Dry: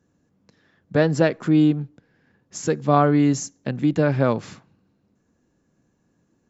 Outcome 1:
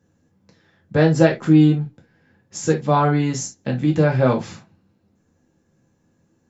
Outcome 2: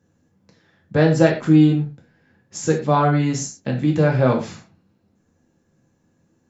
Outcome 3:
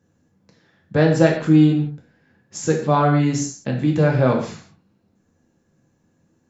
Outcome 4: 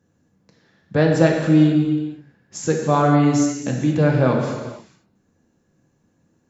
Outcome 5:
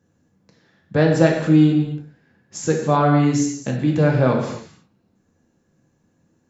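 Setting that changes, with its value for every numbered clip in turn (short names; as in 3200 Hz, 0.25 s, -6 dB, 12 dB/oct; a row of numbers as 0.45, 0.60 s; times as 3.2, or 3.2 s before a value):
non-linear reverb, gate: 90, 140, 200, 510, 320 ms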